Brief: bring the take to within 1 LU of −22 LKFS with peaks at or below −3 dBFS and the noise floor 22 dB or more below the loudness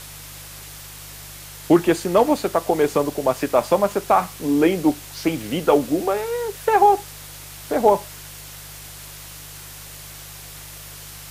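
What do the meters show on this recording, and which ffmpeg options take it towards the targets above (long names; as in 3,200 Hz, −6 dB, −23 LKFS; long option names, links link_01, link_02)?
mains hum 50 Hz; hum harmonics up to 150 Hz; level of the hum −43 dBFS; background noise floor −39 dBFS; target noise floor −42 dBFS; integrated loudness −20.0 LKFS; sample peak −3.5 dBFS; target loudness −22.0 LKFS
→ -af "bandreject=frequency=50:width_type=h:width=4,bandreject=frequency=100:width_type=h:width=4,bandreject=frequency=150:width_type=h:width=4"
-af "afftdn=noise_reduction=6:noise_floor=-39"
-af "volume=-2dB"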